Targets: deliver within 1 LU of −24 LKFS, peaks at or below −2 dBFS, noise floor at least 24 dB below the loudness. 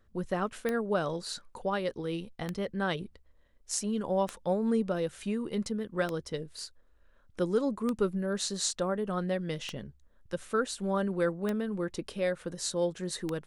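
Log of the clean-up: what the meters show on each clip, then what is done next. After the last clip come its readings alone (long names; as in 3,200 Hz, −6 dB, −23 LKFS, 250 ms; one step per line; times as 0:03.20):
number of clicks 8; integrated loudness −32.5 LKFS; sample peak −13.5 dBFS; target loudness −24.0 LKFS
→ click removal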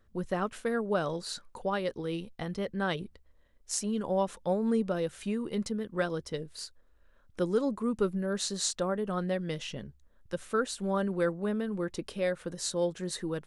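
number of clicks 0; integrated loudness −32.5 LKFS; sample peak −13.5 dBFS; target loudness −24.0 LKFS
→ level +8.5 dB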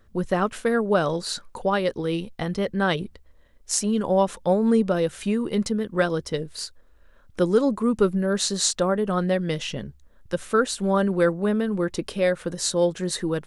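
integrated loudness −24.0 LKFS; sample peak −5.0 dBFS; background noise floor −54 dBFS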